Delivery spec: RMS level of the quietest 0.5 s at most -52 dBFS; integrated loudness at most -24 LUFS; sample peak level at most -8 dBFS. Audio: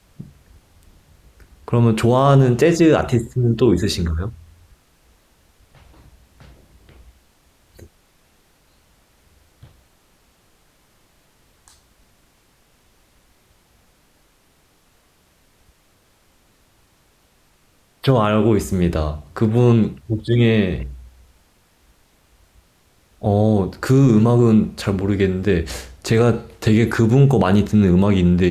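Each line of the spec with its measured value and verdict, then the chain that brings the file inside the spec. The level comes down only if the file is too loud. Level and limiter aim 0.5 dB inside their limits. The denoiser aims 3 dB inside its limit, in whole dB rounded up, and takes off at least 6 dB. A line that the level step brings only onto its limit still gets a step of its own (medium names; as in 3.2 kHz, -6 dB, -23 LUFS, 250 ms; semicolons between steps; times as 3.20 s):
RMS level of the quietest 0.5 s -58 dBFS: pass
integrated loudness -17.0 LUFS: fail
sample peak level -4.5 dBFS: fail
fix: trim -7.5 dB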